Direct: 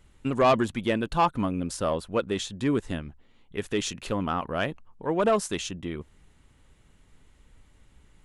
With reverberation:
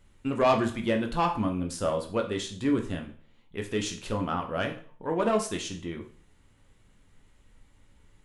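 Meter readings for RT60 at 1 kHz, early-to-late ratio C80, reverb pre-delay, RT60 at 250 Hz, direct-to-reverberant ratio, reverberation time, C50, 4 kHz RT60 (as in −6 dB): 0.45 s, 15.5 dB, 5 ms, 0.45 s, 3.0 dB, 0.45 s, 10.5 dB, 0.40 s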